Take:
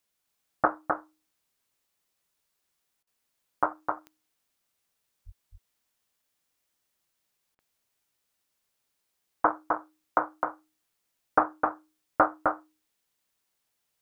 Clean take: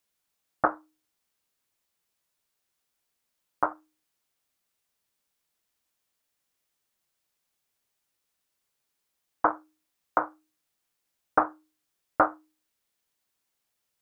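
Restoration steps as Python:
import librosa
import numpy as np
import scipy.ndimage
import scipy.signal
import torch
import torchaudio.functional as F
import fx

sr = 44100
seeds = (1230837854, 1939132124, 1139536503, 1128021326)

y = fx.fix_declick_ar(x, sr, threshold=10.0)
y = fx.highpass(y, sr, hz=140.0, slope=24, at=(5.25, 5.37), fade=0.02)
y = fx.fix_interpolate(y, sr, at_s=(3.03, 7.55), length_ms=40.0)
y = fx.fix_echo_inverse(y, sr, delay_ms=259, level_db=-4.5)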